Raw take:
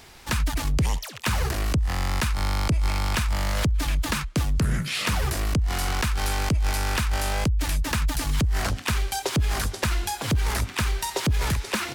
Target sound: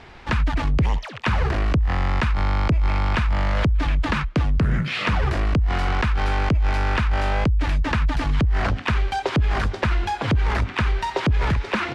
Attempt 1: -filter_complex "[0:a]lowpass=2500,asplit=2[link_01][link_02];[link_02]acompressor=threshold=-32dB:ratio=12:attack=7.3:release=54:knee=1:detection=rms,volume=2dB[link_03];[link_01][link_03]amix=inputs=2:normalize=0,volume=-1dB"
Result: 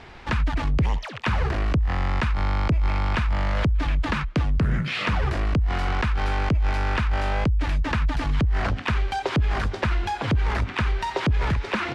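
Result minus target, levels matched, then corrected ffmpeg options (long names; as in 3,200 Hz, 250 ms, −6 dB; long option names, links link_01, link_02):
downward compressor: peak gain reduction +6.5 dB
-filter_complex "[0:a]lowpass=2500,asplit=2[link_01][link_02];[link_02]acompressor=threshold=-25dB:ratio=12:attack=7.3:release=54:knee=1:detection=rms,volume=2dB[link_03];[link_01][link_03]amix=inputs=2:normalize=0,volume=-1dB"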